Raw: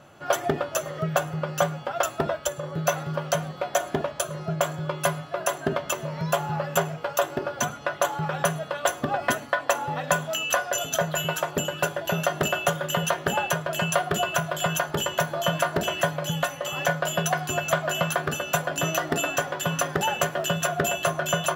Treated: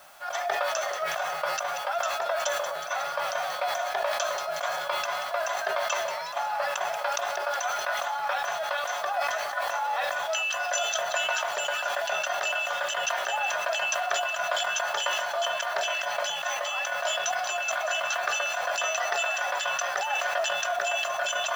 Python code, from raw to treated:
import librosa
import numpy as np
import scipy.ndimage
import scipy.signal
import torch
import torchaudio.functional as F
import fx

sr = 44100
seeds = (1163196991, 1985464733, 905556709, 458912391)

p1 = scipy.signal.sosfilt(scipy.signal.ellip(3, 1.0, 40, [660.0, 5700.0], 'bandpass', fs=sr, output='sos'), x)
p2 = fx.high_shelf(p1, sr, hz=3800.0, db=4.0)
p3 = fx.notch(p2, sr, hz=2900.0, q=13.0)
p4 = fx.over_compress(p3, sr, threshold_db=-28.0, ratio=-0.5)
p5 = fx.dmg_noise_colour(p4, sr, seeds[0], colour='white', level_db=-57.0)
p6 = p5 + fx.echo_split(p5, sr, split_hz=1500.0, low_ms=413, high_ms=183, feedback_pct=52, wet_db=-13.5, dry=0)
y = fx.sustainer(p6, sr, db_per_s=25.0)